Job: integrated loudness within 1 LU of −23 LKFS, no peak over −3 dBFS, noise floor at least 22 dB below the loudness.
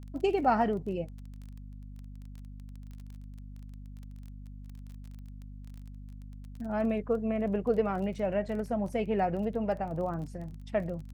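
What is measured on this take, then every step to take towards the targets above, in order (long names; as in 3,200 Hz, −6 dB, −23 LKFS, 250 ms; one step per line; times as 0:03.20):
crackle rate 21 per second; mains hum 50 Hz; hum harmonics up to 250 Hz; level of the hum −42 dBFS; integrated loudness −31.0 LKFS; sample peak −13.5 dBFS; target loudness −23.0 LKFS
→ click removal
mains-hum notches 50/100/150/200/250 Hz
level +8 dB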